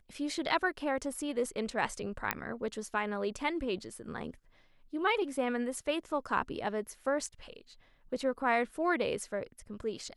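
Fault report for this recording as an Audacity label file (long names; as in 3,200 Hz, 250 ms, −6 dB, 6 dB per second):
2.310000	2.310000	click −13 dBFS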